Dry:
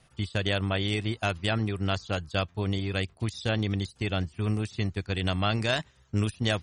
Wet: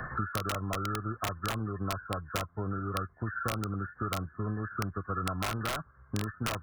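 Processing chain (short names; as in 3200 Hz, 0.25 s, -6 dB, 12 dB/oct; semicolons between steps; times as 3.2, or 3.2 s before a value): nonlinear frequency compression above 1000 Hz 4:1; wrapped overs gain 17.5 dB; three-band squash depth 100%; gain -7 dB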